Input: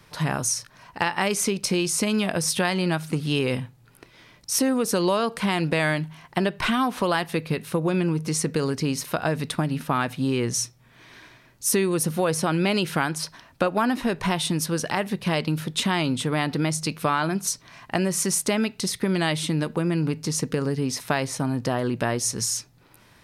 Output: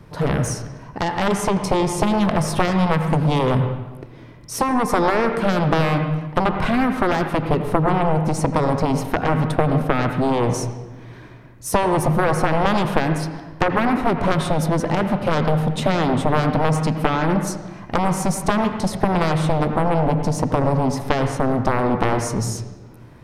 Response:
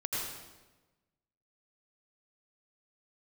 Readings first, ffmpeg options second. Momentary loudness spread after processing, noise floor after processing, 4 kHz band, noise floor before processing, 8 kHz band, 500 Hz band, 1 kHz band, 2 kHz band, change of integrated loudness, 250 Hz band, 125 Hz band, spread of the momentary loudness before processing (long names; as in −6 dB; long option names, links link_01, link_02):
7 LU, −41 dBFS, −3.0 dB, −55 dBFS, −5.5 dB, +5.5 dB, +8.0 dB, +2.0 dB, +4.5 dB, +4.5 dB, +7.0 dB, 5 LU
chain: -filter_complex "[0:a]tiltshelf=frequency=970:gain=8,aeval=exprs='0.841*(cos(1*acos(clip(val(0)/0.841,-1,1)))-cos(1*PI/2))+0.376*(cos(7*acos(clip(val(0)/0.841,-1,1)))-cos(7*PI/2))':channel_layout=same,asplit=2[link_01][link_02];[1:a]atrim=start_sample=2205,lowpass=2700[link_03];[link_02][link_03]afir=irnorm=-1:irlink=0,volume=-8dB[link_04];[link_01][link_04]amix=inputs=2:normalize=0,volume=-4dB"